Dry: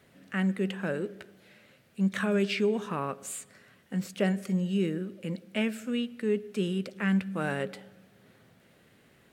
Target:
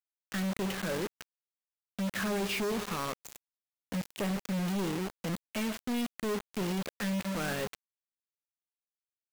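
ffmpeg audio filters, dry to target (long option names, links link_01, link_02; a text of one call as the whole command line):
ffmpeg -i in.wav -af "aresample=16000,asoftclip=type=tanh:threshold=-28dB,aresample=44100,acrusher=bits=5:mix=0:aa=0.000001" out.wav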